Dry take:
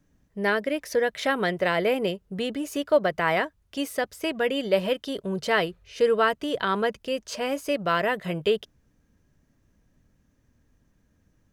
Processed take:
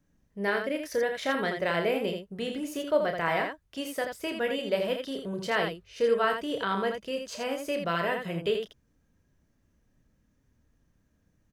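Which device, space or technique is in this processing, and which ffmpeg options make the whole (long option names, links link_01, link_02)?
slapback doubling: -filter_complex "[0:a]asplit=3[link_01][link_02][link_03];[link_02]adelay=30,volume=-7dB[link_04];[link_03]adelay=82,volume=-6dB[link_05];[link_01][link_04][link_05]amix=inputs=3:normalize=0,volume=-5.5dB"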